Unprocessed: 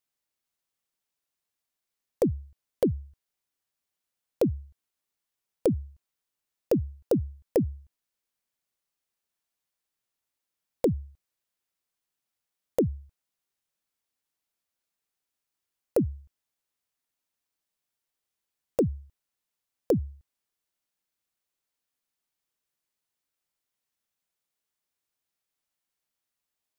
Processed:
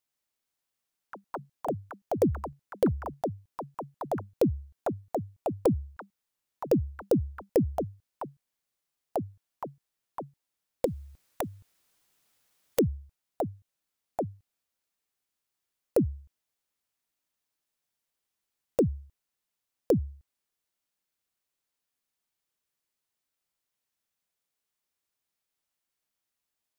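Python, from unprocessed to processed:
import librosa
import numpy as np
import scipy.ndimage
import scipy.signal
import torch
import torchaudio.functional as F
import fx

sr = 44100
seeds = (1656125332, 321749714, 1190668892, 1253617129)

y = fx.echo_pitch(x, sr, ms=116, semitones=6, count=3, db_per_echo=-6.0)
y = fx.spectral_comp(y, sr, ratio=2.0, at=(10.85, 12.79))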